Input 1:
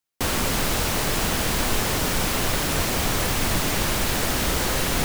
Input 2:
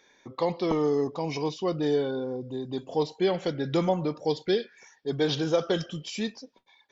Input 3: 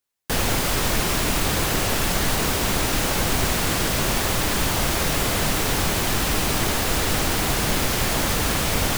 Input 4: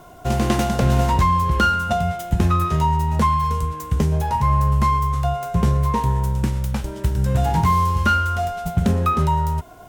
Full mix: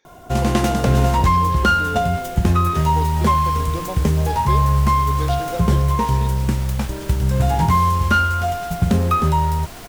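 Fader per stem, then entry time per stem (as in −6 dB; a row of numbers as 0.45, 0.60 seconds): −16.5, −5.5, −15.5, +1.5 decibels; 0.55, 0.00, 2.45, 0.05 seconds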